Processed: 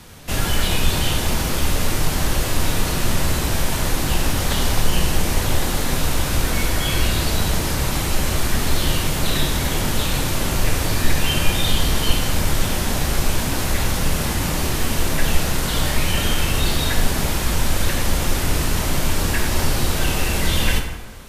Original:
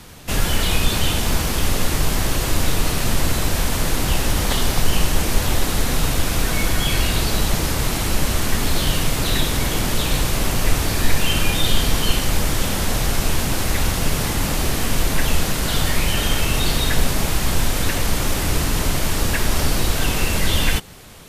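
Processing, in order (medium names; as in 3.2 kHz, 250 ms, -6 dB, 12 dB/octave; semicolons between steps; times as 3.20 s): plate-style reverb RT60 1.3 s, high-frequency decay 0.6×, DRR 3 dB; trim -2 dB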